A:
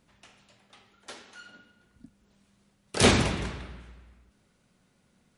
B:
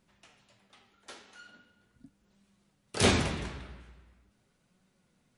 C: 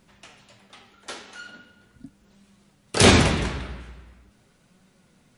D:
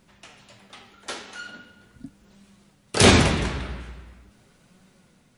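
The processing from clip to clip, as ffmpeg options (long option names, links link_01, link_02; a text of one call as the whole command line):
ffmpeg -i in.wav -af "flanger=delay=5.2:depth=9.4:regen=61:speed=0.41:shape=sinusoidal" out.wav
ffmpeg -i in.wav -af "alimiter=level_in=12.5dB:limit=-1dB:release=50:level=0:latency=1,volume=-1dB" out.wav
ffmpeg -i in.wav -af "dynaudnorm=framelen=110:gausssize=7:maxgain=3dB" out.wav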